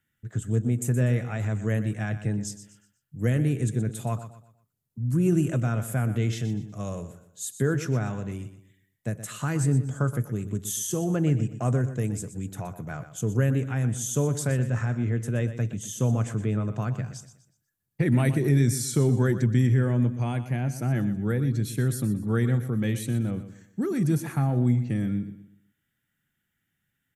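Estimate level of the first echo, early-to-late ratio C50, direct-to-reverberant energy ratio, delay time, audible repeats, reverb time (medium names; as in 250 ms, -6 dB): -12.5 dB, no reverb, no reverb, 122 ms, 3, no reverb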